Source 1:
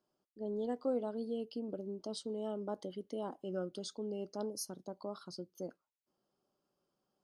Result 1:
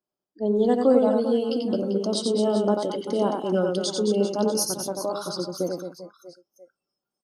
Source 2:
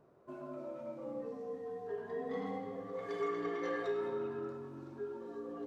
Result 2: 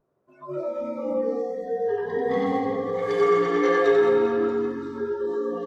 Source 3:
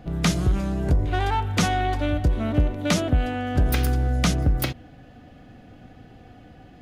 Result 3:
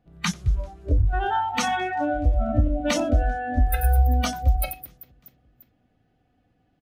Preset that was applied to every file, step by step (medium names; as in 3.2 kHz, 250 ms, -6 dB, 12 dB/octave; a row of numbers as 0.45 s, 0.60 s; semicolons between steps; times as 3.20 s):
reverse bouncing-ball echo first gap 90 ms, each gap 1.4×, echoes 5; spectral noise reduction 23 dB; normalise loudness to -24 LUFS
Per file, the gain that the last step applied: +15.5 dB, +14.0 dB, +0.5 dB